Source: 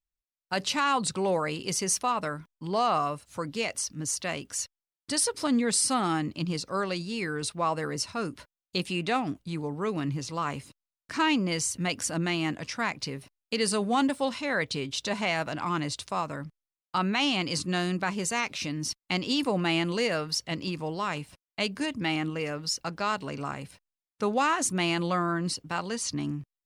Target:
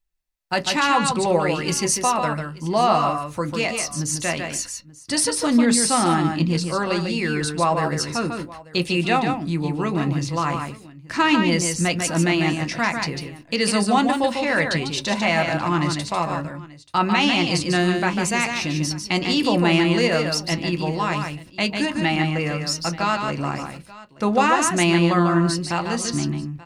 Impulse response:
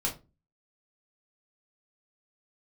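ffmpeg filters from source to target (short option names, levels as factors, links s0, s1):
-filter_complex "[0:a]aecho=1:1:147|884:0.531|0.1,asplit=2[s0][s1];[1:a]atrim=start_sample=2205,asetrate=88200,aresample=44100,lowpass=4600[s2];[s1][s2]afir=irnorm=-1:irlink=0,volume=0.531[s3];[s0][s3]amix=inputs=2:normalize=0,volume=1.78"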